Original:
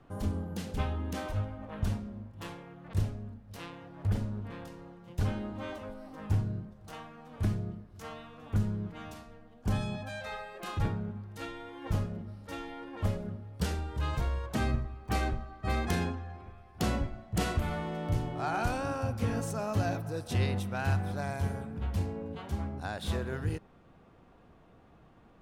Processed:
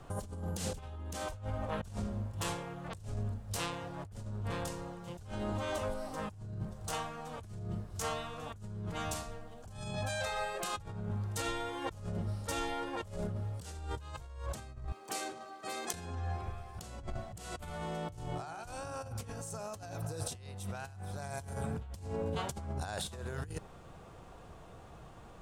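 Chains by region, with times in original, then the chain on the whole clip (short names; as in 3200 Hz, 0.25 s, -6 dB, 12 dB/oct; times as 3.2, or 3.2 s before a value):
14.92–15.94 compressor 10:1, threshold -33 dBFS + ladder high-pass 240 Hz, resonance 35% + high shelf 2200 Hz +6.5 dB
whole clip: graphic EQ 250/2000/8000 Hz -9/-4/+10 dB; negative-ratio compressor -43 dBFS, ratio -1; gain +2.5 dB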